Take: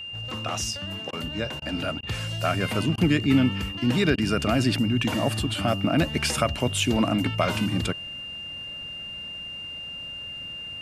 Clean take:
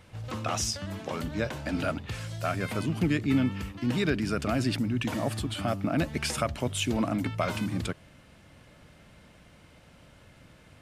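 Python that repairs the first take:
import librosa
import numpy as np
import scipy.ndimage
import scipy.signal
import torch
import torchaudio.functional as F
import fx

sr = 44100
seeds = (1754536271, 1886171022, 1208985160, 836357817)

y = fx.notch(x, sr, hz=2800.0, q=30.0)
y = fx.fix_interpolate(y, sr, at_s=(1.11, 1.6, 2.01, 2.96, 4.16), length_ms=17.0)
y = fx.fix_level(y, sr, at_s=2.07, step_db=-5.0)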